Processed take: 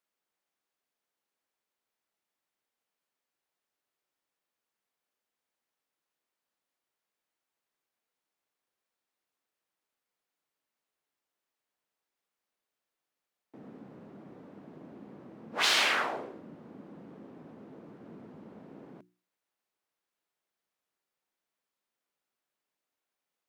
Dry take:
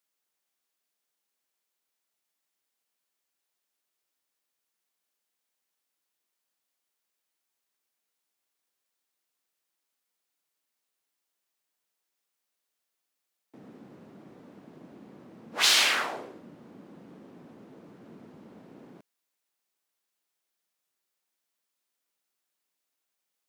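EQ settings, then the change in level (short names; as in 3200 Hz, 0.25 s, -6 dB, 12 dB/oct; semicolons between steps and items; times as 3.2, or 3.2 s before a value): high shelf 3200 Hz -11.5 dB; notches 60/120/180/240/300/360 Hz; +1.5 dB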